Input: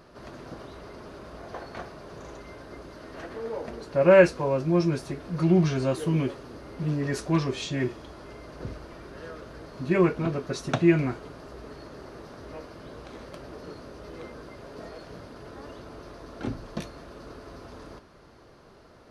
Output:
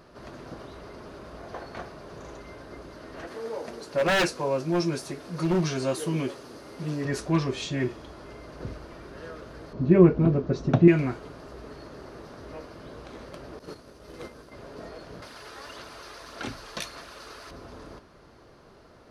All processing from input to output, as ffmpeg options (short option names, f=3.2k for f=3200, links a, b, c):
-filter_complex "[0:a]asettb=1/sr,asplit=3[a][b][c];[a]atrim=end=3.274[d];[b]atrim=start=3.27:end=7.05,asetpts=PTS-STARTPTS,afade=t=in:d=0.004:c=qsin,afade=t=out:st=3.776:d=0.004:c=qsin,highpass=f=180:p=1,bass=f=250:g=-1,treble=f=4k:g=7,aeval=exprs='0.141*(abs(mod(val(0)/0.141+3,4)-2)-1)':c=same[e];[c]atrim=start=7.046[f];[d][e]acrossfade=d=0.004:c1=hsin:c2=qsin[g];[g][f]acrossfade=d=0.004:c1=qsin:c2=hsin,asettb=1/sr,asplit=3[h][i][j];[h]atrim=end=9.734[k];[i]atrim=start=9.73:end=10.88,asetpts=PTS-STARTPTS,afade=t=in:d=0.004:c=qsin,afade=t=out:st=1.146:d=0.004:c=qsin,lowpass=f=6.2k:w=0.5412,lowpass=f=6.2k:w=1.3066,tiltshelf=f=760:g=8.5[l];[j]atrim=start=10.876[m];[k][l]acrossfade=d=0.004:c1=hsin:c2=qsin[n];[n][m]acrossfade=d=0.004:c1=qsin:c2=hsin,asettb=1/sr,asplit=3[o][p][q];[o]atrim=end=13.594[r];[p]atrim=start=13.59:end=14.52,asetpts=PTS-STARTPTS,afade=t=in:d=0.004:c=qsin,afade=t=out:st=0.926:d=0.004:c=qsin,aemphasis=mode=production:type=cd,agate=range=-33dB:threshold=-35dB:ratio=3:release=100:detection=peak,acontrast=80[s];[q]atrim=start=14.516[t];[r][s]acrossfade=d=0.004:c1=hsin:c2=qsin[u];[u][t]acrossfade=d=0.004:c1=qsin:c2=hsin,asettb=1/sr,asplit=3[v][w][x];[v]atrim=end=15.224[y];[w]atrim=start=15.22:end=17.51,asetpts=PTS-STARTPTS,afade=t=in:d=0.004:c=qsin,afade=t=out:st=2.286:d=0.004:c=qsin,tiltshelf=f=750:g=-10,aphaser=in_gain=1:out_gain=1:delay=2.5:decay=0.29:speed=1.7:type=sinusoidal[z];[x]atrim=start=17.506[aa];[y][z]acrossfade=d=0.004:c1=hsin:c2=qsin[ab];[ab][aa]acrossfade=d=0.004:c1=qsin:c2=hsin"